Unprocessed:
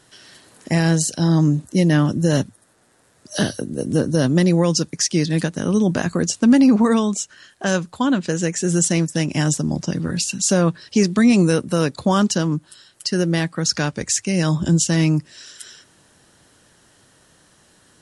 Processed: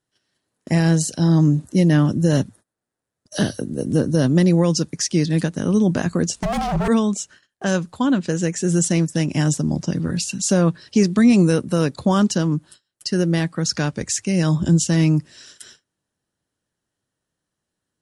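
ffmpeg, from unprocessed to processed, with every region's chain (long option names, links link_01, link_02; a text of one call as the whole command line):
ffmpeg -i in.wav -filter_complex "[0:a]asettb=1/sr,asplit=3[link_01][link_02][link_03];[link_01]atrim=end=6.344[link_04];[link_02]atrim=start=6.34:end=6.88,asetpts=PTS-STARTPTS,afade=type=in:duration=0.004:curve=qsin,afade=type=out:start_time=0.536:duration=0.004:curve=qsin,aeval=exprs='0.168*(abs(mod(val(0)/0.168+3,4)-2)-1)':channel_layout=same,afreqshift=-44[link_05];[link_03]atrim=start=6.876[link_06];[link_04][link_05]acrossfade=duration=0.004:curve1=hsin:curve2=qsin[link_07];[link_07][link_06]acrossfade=duration=0.004:curve1=qsin:curve2=hsin,agate=range=-25dB:threshold=-41dB:ratio=16:detection=peak,lowshelf=frequency=470:gain=4.5,volume=-3dB" out.wav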